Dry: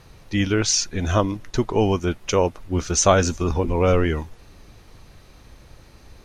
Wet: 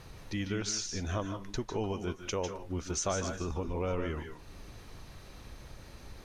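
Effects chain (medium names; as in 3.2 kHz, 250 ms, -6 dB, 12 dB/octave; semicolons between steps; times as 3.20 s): compression 2:1, threshold -41 dBFS, peak gain reduction 16.5 dB; on a send: reverberation RT60 0.20 s, pre-delay 142 ms, DRR 6 dB; on the sum: trim -1.5 dB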